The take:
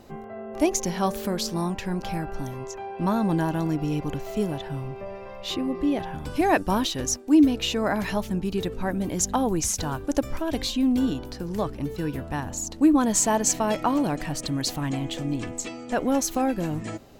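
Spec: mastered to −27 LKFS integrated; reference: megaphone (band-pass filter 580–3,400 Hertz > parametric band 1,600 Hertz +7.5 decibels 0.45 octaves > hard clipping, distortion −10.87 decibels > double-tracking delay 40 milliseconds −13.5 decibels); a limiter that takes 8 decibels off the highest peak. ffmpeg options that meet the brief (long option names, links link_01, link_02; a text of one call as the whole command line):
ffmpeg -i in.wav -filter_complex "[0:a]alimiter=limit=-15.5dB:level=0:latency=1,highpass=580,lowpass=3400,equalizer=frequency=1600:width_type=o:width=0.45:gain=7.5,asoftclip=type=hard:threshold=-25.5dB,asplit=2[link_01][link_02];[link_02]adelay=40,volume=-13.5dB[link_03];[link_01][link_03]amix=inputs=2:normalize=0,volume=7.5dB" out.wav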